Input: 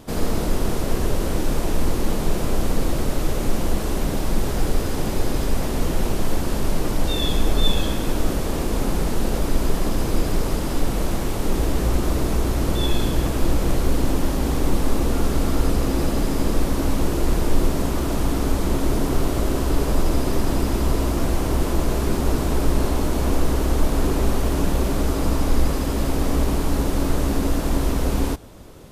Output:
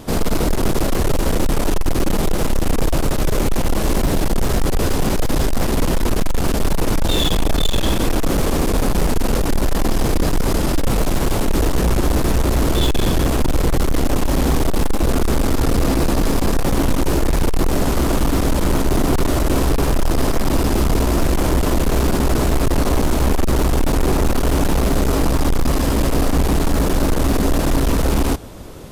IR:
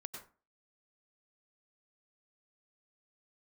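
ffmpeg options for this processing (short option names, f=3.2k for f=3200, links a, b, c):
-af "volume=20dB,asoftclip=hard,volume=-20dB,aeval=exprs='0.106*(cos(1*acos(clip(val(0)/0.106,-1,1)))-cos(1*PI/2))+0.0133*(cos(2*acos(clip(val(0)/0.106,-1,1)))-cos(2*PI/2))+0.0075*(cos(4*acos(clip(val(0)/0.106,-1,1)))-cos(4*PI/2))':c=same,volume=7.5dB"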